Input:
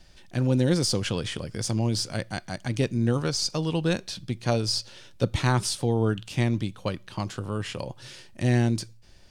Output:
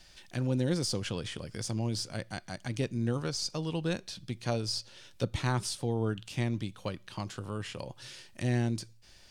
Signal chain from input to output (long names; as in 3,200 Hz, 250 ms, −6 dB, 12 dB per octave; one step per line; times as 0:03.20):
one half of a high-frequency compander encoder only
level −7 dB